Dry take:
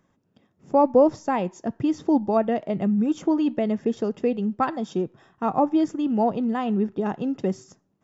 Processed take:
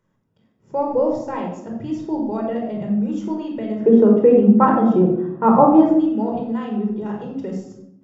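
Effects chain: 3.80–5.94 s: FFT filter 100 Hz 0 dB, 150 Hz +13 dB, 1.2 kHz +13 dB, 6 kHz -11 dB; reverberation RT60 0.80 s, pre-delay 19 ms, DRR 0 dB; trim -7.5 dB

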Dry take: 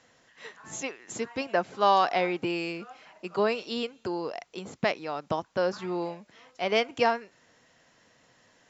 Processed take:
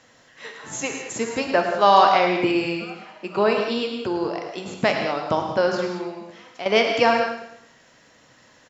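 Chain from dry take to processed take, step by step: 2.51–4.44 s: treble shelf 4.9 kHz -6.5 dB; 5.87–6.66 s: compression 4:1, threshold -37 dBFS, peak gain reduction 10.5 dB; feedback delay 108 ms, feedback 42%, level -12 dB; gated-style reverb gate 230 ms flat, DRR 3 dB; trim +6 dB

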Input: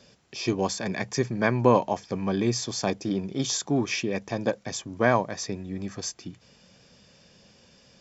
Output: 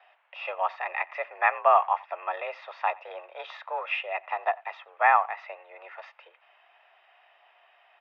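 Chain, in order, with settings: speakerphone echo 90 ms, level -23 dB; mistuned SSB +170 Hz 540–2600 Hz; trim +3.5 dB

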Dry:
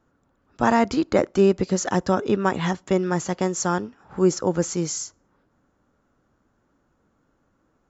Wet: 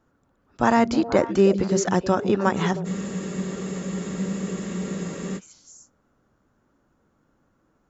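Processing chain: repeats whose band climbs or falls 158 ms, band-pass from 170 Hz, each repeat 1.4 oct, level -5 dB; spectral freeze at 2.88 s, 2.49 s

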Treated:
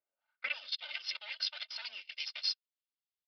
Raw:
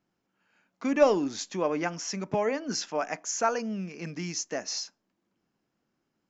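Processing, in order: comb filter that takes the minimum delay 1.4 ms; gate -37 dBFS, range -24 dB; tone controls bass -6 dB, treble -1 dB; comb 3.3 ms, depth 63%; compression 6:1, threshold -32 dBFS, peak gain reduction 19 dB; peak limiter -28 dBFS, peak gain reduction 7 dB; high-pass sweep 370 Hz -> 3.4 kHz, 0.15–1.12 s; granular stretch 0.52×, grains 21 ms; resampled via 11.025 kHz; trim +7.5 dB

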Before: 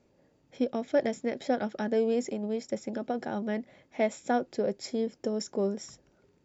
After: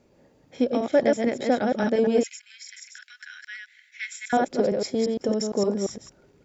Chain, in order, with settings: chunks repeated in reverse 115 ms, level -3 dB; 2.23–4.33 s: Chebyshev high-pass 1.5 kHz, order 6; trim +5.5 dB

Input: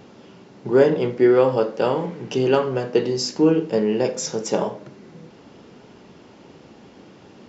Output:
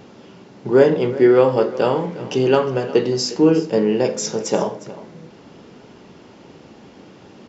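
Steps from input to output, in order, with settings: delay 358 ms -17 dB; trim +2.5 dB

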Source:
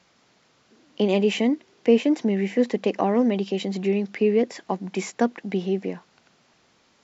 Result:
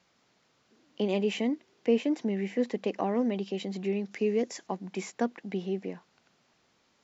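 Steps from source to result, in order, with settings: 4.11–4.67 s: peaking EQ 6.5 kHz +11.5 dB 0.68 oct; trim -7.5 dB

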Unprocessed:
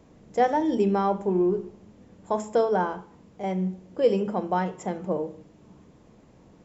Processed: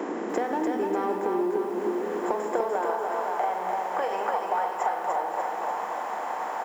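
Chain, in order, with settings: spectral levelling over time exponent 0.6; ten-band graphic EQ 125 Hz -10 dB, 250 Hz +6 dB, 500 Hz -5 dB, 1 kHz +5 dB, 4 kHz -4 dB; in parallel at -6 dB: saturation -23 dBFS, distortion -8 dB; on the sum: high-pass 96 Hz 24 dB/octave; peaking EQ 1.8 kHz +5.5 dB 1 oct; hum notches 50/100/150/200/250/300 Hz; on a send: delay 513 ms -18 dB; on the sum: high-pass sweep 330 Hz -> 750 Hz, 1.80–3.50 s; compression 12:1, threshold -25 dBFS, peak gain reduction 17.5 dB; bit-crushed delay 295 ms, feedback 55%, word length 9-bit, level -4 dB

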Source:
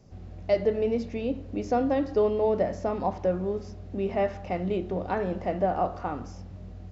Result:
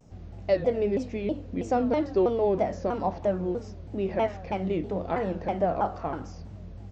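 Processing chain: vibrato with a chosen wave saw down 3.1 Hz, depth 250 cents

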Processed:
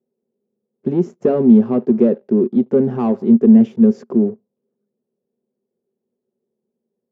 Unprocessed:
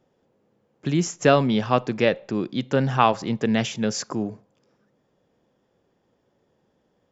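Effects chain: dynamic bell 300 Hz, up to +6 dB, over -35 dBFS, Q 1.8; waveshaping leveller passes 3; two resonant band-passes 300 Hz, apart 0.73 oct; trim +3.5 dB

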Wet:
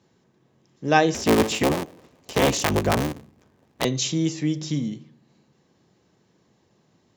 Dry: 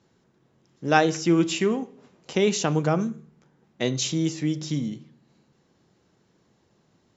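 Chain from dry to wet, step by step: 1.14–3.85 s: cycle switcher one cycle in 3, inverted; high-pass 58 Hz; band-stop 1.4 kHz, Q 11; trim +1.5 dB

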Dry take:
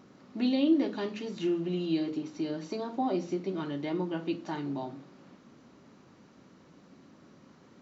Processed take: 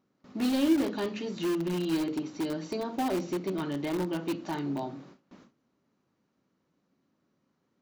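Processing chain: gate with hold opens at -44 dBFS; in parallel at -10 dB: integer overflow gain 26.5 dB

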